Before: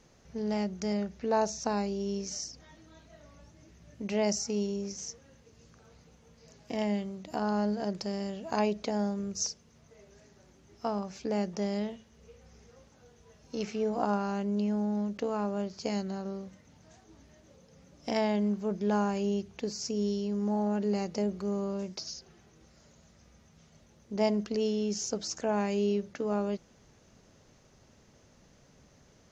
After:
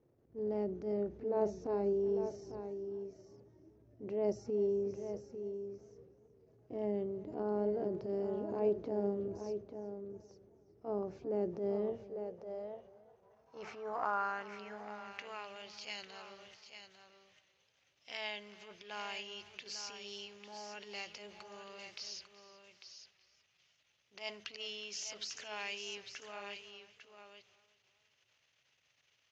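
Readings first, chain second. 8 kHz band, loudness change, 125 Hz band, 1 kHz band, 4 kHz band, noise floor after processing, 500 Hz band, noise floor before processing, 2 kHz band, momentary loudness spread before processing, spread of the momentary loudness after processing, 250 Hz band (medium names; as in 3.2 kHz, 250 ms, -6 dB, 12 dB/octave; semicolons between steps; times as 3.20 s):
no reading, -7.5 dB, -12.5 dB, -8.0 dB, -4.0 dB, -75 dBFS, -4.0 dB, -61 dBFS, -2.5 dB, 10 LU, 19 LU, -12.5 dB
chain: gate -49 dBFS, range -11 dB; resonant low shelf 150 Hz +8 dB, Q 3; in parallel at 0 dB: compression, threshold -42 dBFS, peak gain reduction 17.5 dB; on the sum: transient shaper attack -12 dB, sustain +4 dB; on a send: delay 848 ms -9 dB; on the sum: band-pass sweep 350 Hz -> 2.8 kHz, 11.72–15.51 s; modulated delay 372 ms, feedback 37%, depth 53 cents, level -19 dB; trim +3.5 dB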